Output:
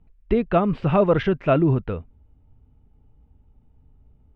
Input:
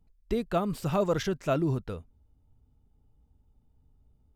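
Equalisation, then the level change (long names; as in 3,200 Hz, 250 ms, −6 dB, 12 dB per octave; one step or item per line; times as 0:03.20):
Chebyshev low-pass filter 2,700 Hz, order 3
+9.0 dB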